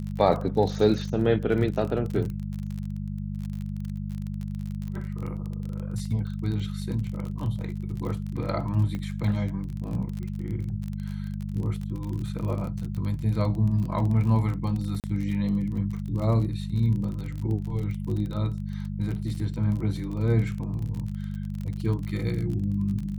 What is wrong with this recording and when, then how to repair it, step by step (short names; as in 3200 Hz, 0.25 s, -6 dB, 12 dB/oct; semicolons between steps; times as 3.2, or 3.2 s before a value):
crackle 33/s -32 dBFS
hum 50 Hz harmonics 4 -32 dBFS
8.95 pop -22 dBFS
15–15.04 gap 38 ms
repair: de-click; de-hum 50 Hz, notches 4; interpolate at 15, 38 ms